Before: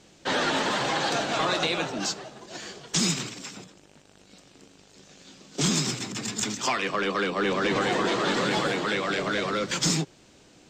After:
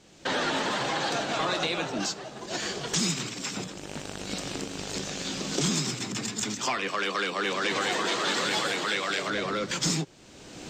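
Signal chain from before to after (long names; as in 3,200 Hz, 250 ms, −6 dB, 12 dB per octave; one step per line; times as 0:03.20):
camcorder AGC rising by 25 dB per second
0:06.88–0:09.30: spectral tilt +2.5 dB per octave
level −2.5 dB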